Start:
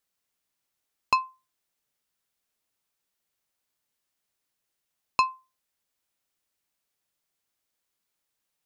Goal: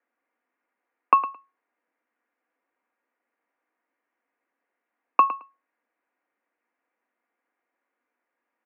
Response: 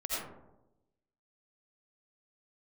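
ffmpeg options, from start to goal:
-filter_complex "[0:a]bandreject=frequency=1300:width=30,aecho=1:1:4.4:0.35,aecho=1:1:109|218:0.224|0.0336,asplit=2[link_01][link_02];[1:a]atrim=start_sample=2205,afade=type=out:start_time=0.14:duration=0.01,atrim=end_sample=6615,asetrate=83790,aresample=44100[link_03];[link_02][link_03]afir=irnorm=-1:irlink=0,volume=-26dB[link_04];[link_01][link_04]amix=inputs=2:normalize=0,highpass=frequency=180:width_type=q:width=0.5412,highpass=frequency=180:width_type=q:width=1.307,lowpass=frequency=2100:width_type=q:width=0.5176,lowpass=frequency=2100:width_type=q:width=0.7071,lowpass=frequency=2100:width_type=q:width=1.932,afreqshift=56,volume=8.5dB"

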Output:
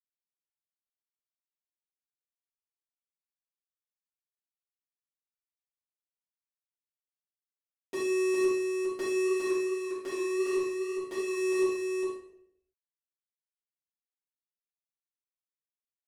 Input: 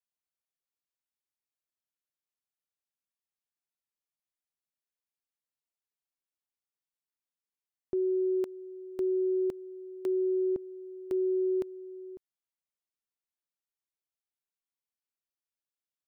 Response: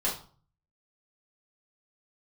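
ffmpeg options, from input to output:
-filter_complex "[0:a]highpass=230,equalizer=frequency=470:width=0.55:gain=-6.5,acompressor=threshold=-42dB:ratio=6,acrusher=bits=6:mix=0:aa=0.000001,asplit=3[link_01][link_02][link_03];[link_01]afade=type=out:start_time=9.24:duration=0.02[link_04];[link_02]flanger=delay=6.5:depth=7.5:regen=46:speed=1.6:shape=sinusoidal,afade=type=in:start_time=9.24:duration=0.02,afade=type=out:start_time=11.33:duration=0.02[link_05];[link_03]afade=type=in:start_time=11.33:duration=0.02[link_06];[link_04][link_05][link_06]amix=inputs=3:normalize=0,asoftclip=type=tanh:threshold=-35.5dB,aecho=1:1:408:0.596[link_07];[1:a]atrim=start_sample=2205,afade=type=out:start_time=0.42:duration=0.01,atrim=end_sample=18963,asetrate=23373,aresample=44100[link_08];[link_07][link_08]afir=irnorm=-1:irlink=0"

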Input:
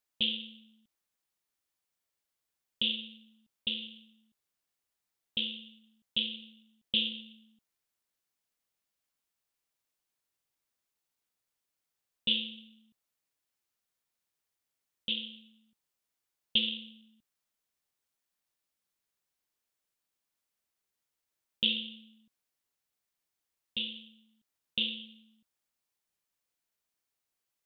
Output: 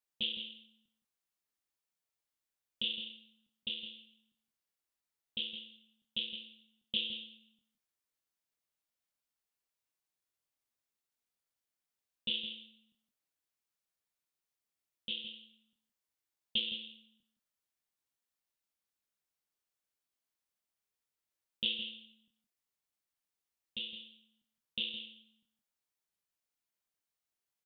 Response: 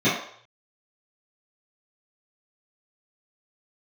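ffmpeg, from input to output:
-filter_complex "[0:a]asplit=2[link_01][link_02];[link_02]adelay=25,volume=-6dB[link_03];[link_01][link_03]amix=inputs=2:normalize=0,asplit=2[link_04][link_05];[link_05]aecho=0:1:164:0.335[link_06];[link_04][link_06]amix=inputs=2:normalize=0,volume=-6.5dB"

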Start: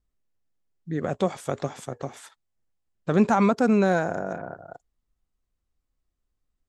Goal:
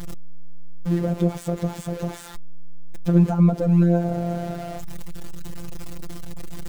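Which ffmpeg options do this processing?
ffmpeg -i in.wav -filter_complex "[0:a]aeval=exprs='val(0)+0.5*0.0501*sgn(val(0))':channel_layout=same,acrossover=split=630[link_01][link_02];[link_02]acompressor=threshold=-36dB:ratio=10[link_03];[link_01][link_03]amix=inputs=2:normalize=0,afftfilt=real='hypot(re,im)*cos(PI*b)':imag='0':win_size=1024:overlap=0.75,lowshelf=frequency=380:gain=8.5" out.wav

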